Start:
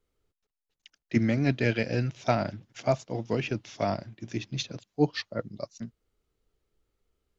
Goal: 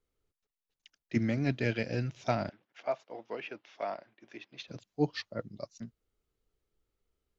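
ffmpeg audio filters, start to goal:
-filter_complex "[0:a]asettb=1/sr,asplit=3[s0][s1][s2];[s0]atrim=end=2.494[s3];[s1]atrim=start=2.49:end=4.68,asetpts=PTS-STARTPTS,afade=t=in:d=0.004:c=qsin,afade=t=out:st=2.186:d=0.004:c=qsin,highpass=520,lowpass=2800[s4];[s2]atrim=start=4.676[s5];[s3][s4]acrossfade=d=0.004:c1=hsin:c2=qsin[s6];[s6][s5]acrossfade=d=0.004:c1=qsin:c2=hsin,volume=0.562"

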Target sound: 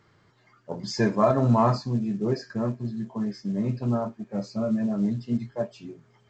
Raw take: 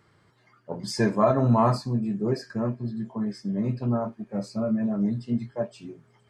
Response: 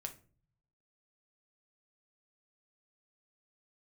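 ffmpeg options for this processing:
-ar 16000 -c:a pcm_mulaw

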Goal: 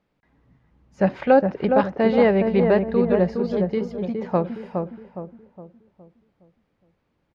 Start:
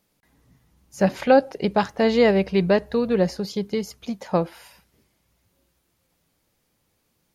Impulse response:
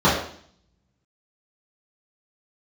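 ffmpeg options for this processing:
-filter_complex "[0:a]lowpass=2300,asplit=2[s0][s1];[s1]adelay=414,lowpass=f=1100:p=1,volume=0.631,asplit=2[s2][s3];[s3]adelay=414,lowpass=f=1100:p=1,volume=0.44,asplit=2[s4][s5];[s5]adelay=414,lowpass=f=1100:p=1,volume=0.44,asplit=2[s6][s7];[s7]adelay=414,lowpass=f=1100:p=1,volume=0.44,asplit=2[s8][s9];[s9]adelay=414,lowpass=f=1100:p=1,volume=0.44,asplit=2[s10][s11];[s11]adelay=414,lowpass=f=1100:p=1,volume=0.44[s12];[s2][s4][s6][s8][s10][s12]amix=inputs=6:normalize=0[s13];[s0][s13]amix=inputs=2:normalize=0"

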